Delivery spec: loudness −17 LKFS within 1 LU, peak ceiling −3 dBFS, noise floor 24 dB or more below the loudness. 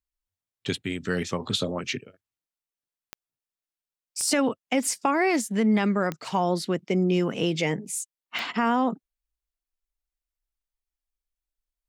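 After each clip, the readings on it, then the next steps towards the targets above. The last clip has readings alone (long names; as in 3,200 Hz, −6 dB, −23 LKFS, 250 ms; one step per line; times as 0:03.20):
number of clicks 4; integrated loudness −26.0 LKFS; sample peak −10.5 dBFS; target loudness −17.0 LKFS
→ click removal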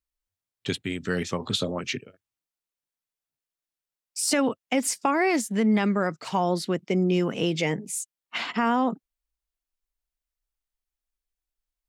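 number of clicks 0; integrated loudness −26.0 LKFS; sample peak −10.5 dBFS; target loudness −17.0 LKFS
→ level +9 dB
brickwall limiter −3 dBFS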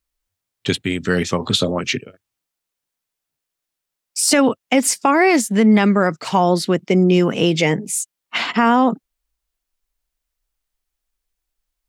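integrated loudness −17.0 LKFS; sample peak −3.0 dBFS; background noise floor −82 dBFS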